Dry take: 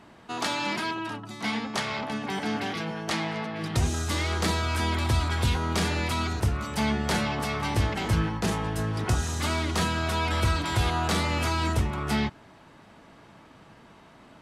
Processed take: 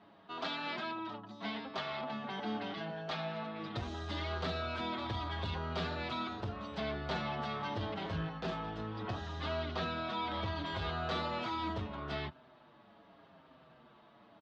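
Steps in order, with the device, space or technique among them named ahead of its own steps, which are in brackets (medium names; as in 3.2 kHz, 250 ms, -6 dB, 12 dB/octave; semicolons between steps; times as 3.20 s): barber-pole flanger into a guitar amplifier (endless flanger 6.7 ms -0.77 Hz; saturation -20 dBFS, distortion -20 dB; cabinet simulation 82–4200 Hz, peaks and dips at 110 Hz -6 dB, 640 Hz +6 dB, 1.2 kHz +3 dB, 2.2 kHz -4 dB, 3.6 kHz +4 dB); 8.76–10.56 s: low-pass 6.3 kHz 12 dB/octave; trim -6.5 dB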